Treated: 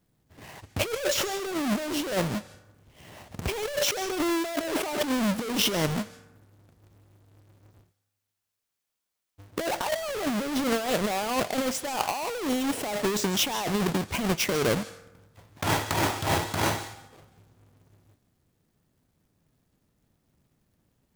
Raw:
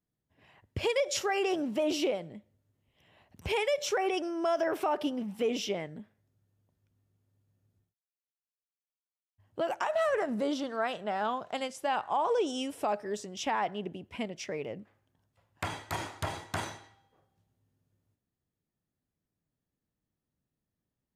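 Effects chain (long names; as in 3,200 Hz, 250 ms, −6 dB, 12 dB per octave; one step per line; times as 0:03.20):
each half-wave held at its own peak
compressor whose output falls as the input rises −34 dBFS, ratio −1
on a send: first-order pre-emphasis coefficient 0.97 + convolution reverb RT60 1.0 s, pre-delay 135 ms, DRR 17 dB
on the sum: level +6 dB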